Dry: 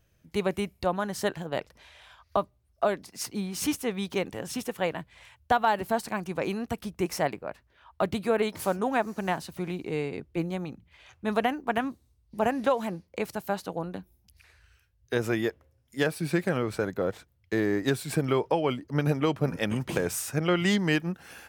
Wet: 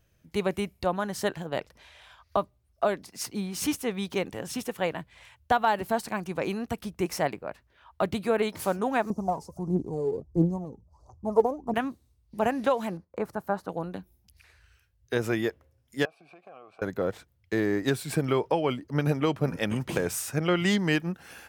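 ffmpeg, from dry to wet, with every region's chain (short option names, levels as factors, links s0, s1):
-filter_complex "[0:a]asettb=1/sr,asplit=3[s0][s1][s2];[s0]atrim=end=9.104[s3];[s1]atrim=start=9.1:end=11.74,asetpts=PTS-STARTPTS,afade=t=in:d=0.004:c=qsin,afade=t=out:st=2.636:d=0.004:c=qsin,asuperstop=centerf=2400:order=12:qfactor=0.59,aemphasis=mode=reproduction:type=50fm,aphaser=in_gain=1:out_gain=1:delay=2.5:decay=0.7:speed=1.5:type=triangular[s4];[s2]atrim=start=11.736[s5];[s3][s4]acrossfade=d=0.004:c1=hsin:c2=qsin[s6];[s6][s5]acrossfade=d=0.004:c1=qsin:c2=hsin,asettb=1/sr,asplit=3[s7][s8][s9];[s7]atrim=end=12.974[s10];[s8]atrim=start=12.97:end=13.69,asetpts=PTS-STARTPTS,afade=t=in:d=0.004:c=qsin,afade=t=out:st=0.716:d=0.004:c=qsin,agate=range=0.398:threshold=0.00141:ratio=16:release=100:detection=peak,highshelf=f=1900:t=q:w=1.5:g=-11[s11];[s9]atrim=start=13.686[s12];[s10][s11]acrossfade=d=0.004:c1=hsin:c2=qsin[s13];[s13][s12]acrossfade=d=0.004:c1=qsin:c2=hsin,asettb=1/sr,asplit=3[s14][s15][s16];[s14]atrim=end=16.054[s17];[s15]atrim=start=16.05:end=16.82,asetpts=PTS-STARTPTS,afade=t=in:d=0.004:c=qsin,afade=t=out:st=0.766:d=0.004:c=qsin,highshelf=f=8500:g=-4,acompressor=threshold=0.0355:ratio=6:attack=3.2:release=140:knee=1:detection=peak,asplit=3[s18][s19][s20];[s18]bandpass=f=730:t=q:w=8,volume=1[s21];[s19]bandpass=f=1090:t=q:w=8,volume=0.501[s22];[s20]bandpass=f=2440:t=q:w=8,volume=0.355[s23];[s21][s22][s23]amix=inputs=3:normalize=0[s24];[s16]atrim=start=16.816[s25];[s17][s24]acrossfade=d=0.004:c1=hsin:c2=qsin[s26];[s26][s25]acrossfade=d=0.004:c1=qsin:c2=hsin"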